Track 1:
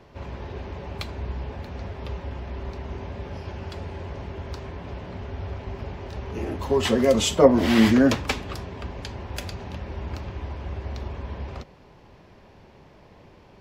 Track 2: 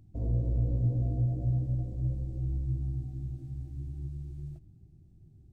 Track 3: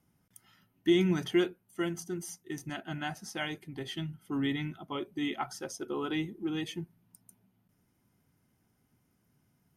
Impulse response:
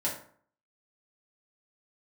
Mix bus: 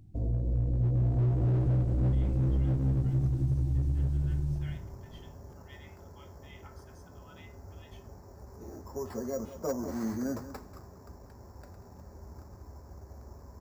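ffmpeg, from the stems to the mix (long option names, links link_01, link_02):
-filter_complex "[0:a]lowpass=frequency=1500:width=0.5412,lowpass=frequency=1500:width=1.3066,acrusher=samples=7:mix=1:aa=0.000001,asoftclip=type=tanh:threshold=-6.5dB,adelay=2250,volume=-15dB,asplit=2[link_01][link_02];[link_02]volume=-14dB[link_03];[1:a]dynaudnorm=framelen=110:gausssize=21:maxgain=13.5dB,volume=19.5dB,asoftclip=hard,volume=-19.5dB,volume=2.5dB,asplit=2[link_04][link_05];[link_05]volume=-6.5dB[link_06];[2:a]highpass=1500,highshelf=frequency=3600:gain=-12,adelay=1250,volume=-17dB,asplit=2[link_07][link_08];[link_08]volume=-3.5dB[link_09];[3:a]atrim=start_sample=2205[link_10];[link_09][link_10]afir=irnorm=-1:irlink=0[link_11];[link_03][link_06]amix=inputs=2:normalize=0,aecho=0:1:188:1[link_12];[link_01][link_04][link_07][link_11][link_12]amix=inputs=5:normalize=0,acompressor=threshold=-28dB:ratio=2.5"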